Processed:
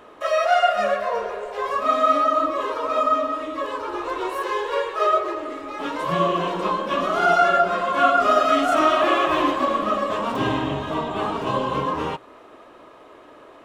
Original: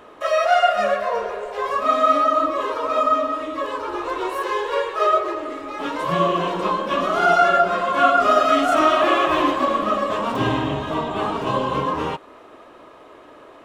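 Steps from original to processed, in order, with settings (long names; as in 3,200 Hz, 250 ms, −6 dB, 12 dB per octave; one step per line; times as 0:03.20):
mains-hum notches 60/120 Hz
level −1.5 dB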